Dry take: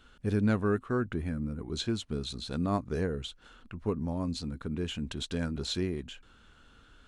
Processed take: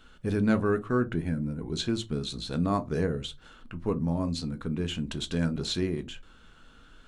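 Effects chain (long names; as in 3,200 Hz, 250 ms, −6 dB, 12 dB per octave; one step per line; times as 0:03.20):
0:01.02–0:01.74: Butterworth band-reject 1,200 Hz, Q 5.3
on a send: convolution reverb RT60 0.25 s, pre-delay 4 ms, DRR 9 dB
on the sum: level +2.5 dB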